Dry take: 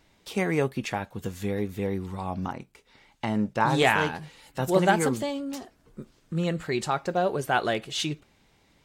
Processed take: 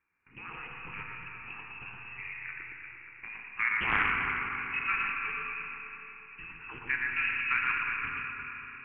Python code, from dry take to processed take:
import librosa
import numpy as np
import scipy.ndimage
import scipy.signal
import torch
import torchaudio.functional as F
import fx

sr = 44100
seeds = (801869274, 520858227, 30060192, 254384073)

y = fx.octave_divider(x, sr, octaves=1, level_db=4.0)
y = fx.env_lowpass(y, sr, base_hz=2600.0, full_db=-20.0)
y = scipy.signal.sosfilt(scipy.signal.butter(8, 510.0, 'highpass', fs=sr, output='sos'), y)
y = fx.level_steps(y, sr, step_db=13)
y = fx.dynamic_eq(y, sr, hz=2600.0, q=2.4, threshold_db=-46.0, ratio=4.0, max_db=-3)
y = fx.formant_shift(y, sr, semitones=4)
y = fx.freq_invert(y, sr, carrier_hz=3300)
y = fx.fixed_phaser(y, sr, hz=1500.0, stages=4)
y = fx.echo_alternate(y, sr, ms=117, hz=2100.0, feedback_pct=70, wet_db=-2)
y = fx.rev_schroeder(y, sr, rt60_s=3.7, comb_ms=25, drr_db=0.5)
y = fx.doppler_dist(y, sr, depth_ms=0.26)